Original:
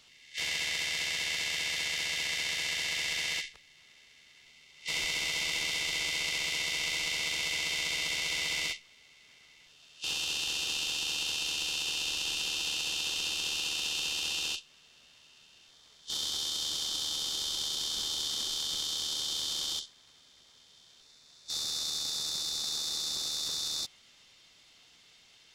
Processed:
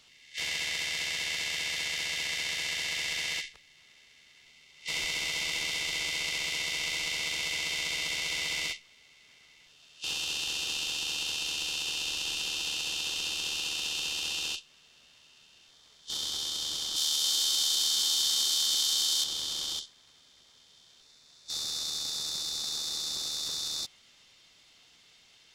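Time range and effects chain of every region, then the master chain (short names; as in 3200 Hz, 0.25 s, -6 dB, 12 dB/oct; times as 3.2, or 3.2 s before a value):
16.96–19.24 tilt +2.5 dB/oct + echo 0.273 s -5.5 dB
whole clip: dry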